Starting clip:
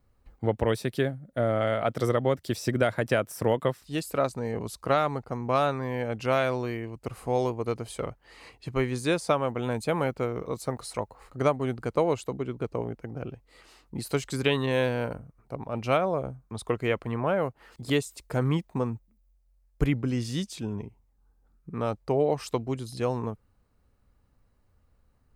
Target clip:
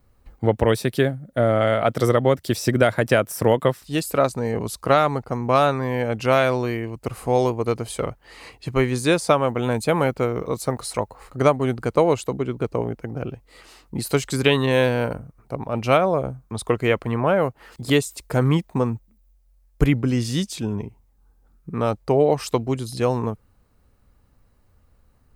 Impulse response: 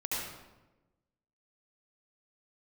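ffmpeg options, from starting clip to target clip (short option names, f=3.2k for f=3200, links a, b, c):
-af "highshelf=f=9.8k:g=4.5,volume=7dB"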